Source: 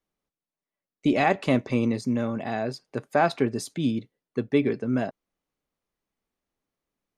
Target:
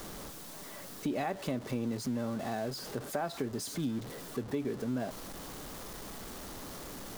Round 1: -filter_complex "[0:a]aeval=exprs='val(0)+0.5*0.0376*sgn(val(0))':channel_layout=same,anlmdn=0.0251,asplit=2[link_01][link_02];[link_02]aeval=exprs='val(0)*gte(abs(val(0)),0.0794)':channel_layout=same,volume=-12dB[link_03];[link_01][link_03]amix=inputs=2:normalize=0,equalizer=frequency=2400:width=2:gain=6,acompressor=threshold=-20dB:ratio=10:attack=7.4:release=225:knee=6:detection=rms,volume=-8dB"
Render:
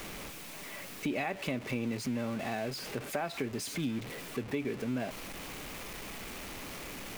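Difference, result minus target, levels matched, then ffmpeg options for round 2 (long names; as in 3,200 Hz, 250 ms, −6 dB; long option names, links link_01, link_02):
2,000 Hz band +5.5 dB
-filter_complex "[0:a]aeval=exprs='val(0)+0.5*0.0376*sgn(val(0))':channel_layout=same,anlmdn=0.0251,asplit=2[link_01][link_02];[link_02]aeval=exprs='val(0)*gte(abs(val(0)),0.0794)':channel_layout=same,volume=-12dB[link_03];[link_01][link_03]amix=inputs=2:normalize=0,equalizer=frequency=2400:width=2:gain=-6,acompressor=threshold=-20dB:ratio=10:attack=7.4:release=225:knee=6:detection=rms,volume=-8dB"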